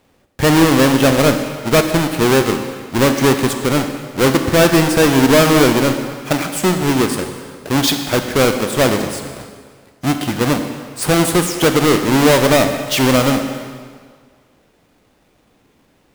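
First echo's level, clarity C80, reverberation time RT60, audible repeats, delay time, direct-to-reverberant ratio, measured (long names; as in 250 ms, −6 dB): no echo audible, 8.0 dB, 1.8 s, no echo audible, no echo audible, 6.0 dB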